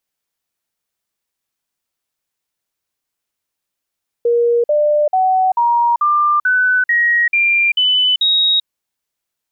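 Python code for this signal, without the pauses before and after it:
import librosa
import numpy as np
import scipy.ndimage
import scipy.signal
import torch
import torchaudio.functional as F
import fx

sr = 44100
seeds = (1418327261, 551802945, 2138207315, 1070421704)

y = fx.stepped_sweep(sr, from_hz=473.0, direction='up', per_octave=3, tones=10, dwell_s=0.39, gap_s=0.05, level_db=-10.5)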